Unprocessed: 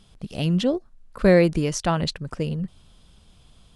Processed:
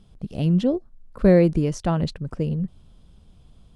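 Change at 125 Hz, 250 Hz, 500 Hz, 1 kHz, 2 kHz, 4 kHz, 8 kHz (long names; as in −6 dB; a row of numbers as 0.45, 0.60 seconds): +2.5, +2.0, −0.5, −3.5, −7.0, −8.5, −9.0 decibels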